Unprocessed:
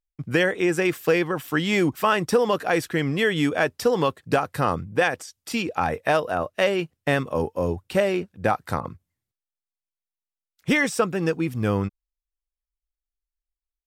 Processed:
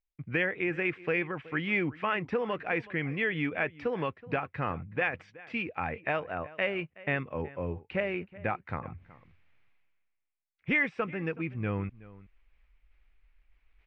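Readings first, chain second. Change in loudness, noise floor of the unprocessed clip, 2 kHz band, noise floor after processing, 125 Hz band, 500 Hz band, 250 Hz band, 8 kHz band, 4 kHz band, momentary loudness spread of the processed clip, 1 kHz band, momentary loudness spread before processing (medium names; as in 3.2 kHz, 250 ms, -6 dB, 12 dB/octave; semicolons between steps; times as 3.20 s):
-8.5 dB, under -85 dBFS, -5.0 dB, -79 dBFS, -8.0 dB, -11.0 dB, -10.0 dB, under -35 dB, -13.0 dB, 8 LU, -10.5 dB, 6 LU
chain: bass shelf 180 Hz +6.5 dB; reverse; upward compressor, threshold -25 dBFS; reverse; four-pole ladder low-pass 2.6 kHz, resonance 60%; echo from a far wall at 64 m, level -19 dB; trim -1.5 dB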